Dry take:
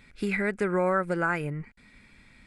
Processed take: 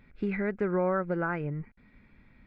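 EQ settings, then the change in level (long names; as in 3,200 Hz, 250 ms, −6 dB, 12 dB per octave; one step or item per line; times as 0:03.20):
head-to-tape spacing loss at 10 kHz 40 dB
0.0 dB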